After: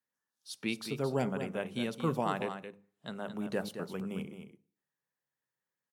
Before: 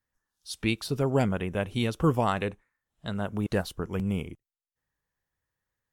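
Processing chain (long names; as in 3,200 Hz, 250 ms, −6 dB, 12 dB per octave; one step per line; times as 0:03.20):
high-pass filter 150 Hz 24 dB per octave
mains-hum notches 50/100/150/200 Hz
single-tap delay 220 ms −9 dB
on a send at −15.5 dB: convolution reverb RT60 0.50 s, pre-delay 3 ms
on the sum: level −6.5 dB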